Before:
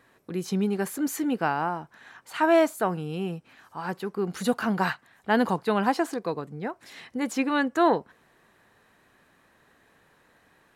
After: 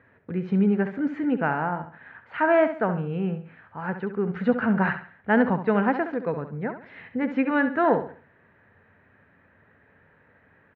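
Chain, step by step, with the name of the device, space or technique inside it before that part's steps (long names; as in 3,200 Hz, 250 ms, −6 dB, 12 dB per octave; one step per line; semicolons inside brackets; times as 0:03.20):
bass cabinet (loudspeaker in its box 63–2,100 Hz, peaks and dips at 93 Hz +10 dB, 340 Hz −8 dB, 750 Hz −6 dB, 1,100 Hz −8 dB)
repeating echo 68 ms, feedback 34%, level −10 dB
level +4.5 dB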